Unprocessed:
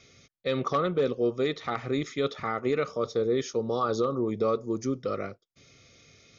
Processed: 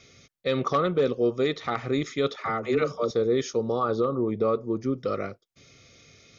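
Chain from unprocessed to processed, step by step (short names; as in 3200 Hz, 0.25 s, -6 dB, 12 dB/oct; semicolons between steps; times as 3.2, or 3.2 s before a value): 2.36–3.11 dispersion lows, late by 77 ms, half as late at 400 Hz; 3.72–4.98 air absorption 230 m; gain +2.5 dB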